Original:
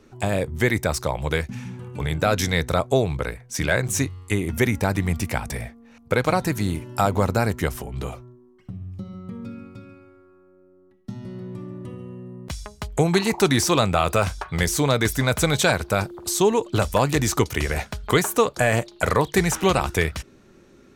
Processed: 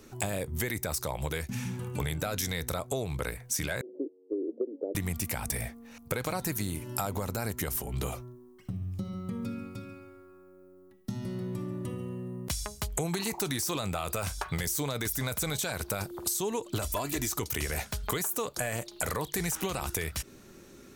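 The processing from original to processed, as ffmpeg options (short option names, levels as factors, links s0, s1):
-filter_complex "[0:a]asettb=1/sr,asplit=3[s0][s1][s2];[s0]atrim=end=3.814[s3];[s1]atrim=start=3.81:end=4.95,asetpts=PTS-STARTPTS,afade=t=in:d=0.004:c=qsin,afade=t=out:st=1.136:d=0.004:c=qsin,asuperpass=centerf=410:order=8:qfactor=1.5[s4];[s2]atrim=start=4.946[s5];[s3][s4]acrossfade=d=0.004:c1=hsin:c2=qsin[s6];[s6][s5]acrossfade=d=0.004:c1=qsin:c2=hsin,asettb=1/sr,asplit=3[s7][s8][s9];[s7]atrim=end=16.824[s10];[s8]atrim=start=16.82:end=17.29,asetpts=PTS-STARTPTS,afade=t=in:d=0.004:c=qsin,afade=t=out:st=0.466:d=0.004:c=qsin,aecho=1:1:3:0.65,atrim=end_sample=20727[s11];[s9]atrim=start=17.286[s12];[s10][s11]acrossfade=d=0.004:c1=hsin:c2=qsin[s13];[s13][s12]acrossfade=d=0.004:c1=qsin:c2=hsin,aemphasis=mode=production:type=50fm,alimiter=limit=0.266:level=0:latency=1:release=17,acompressor=threshold=0.0398:ratio=12"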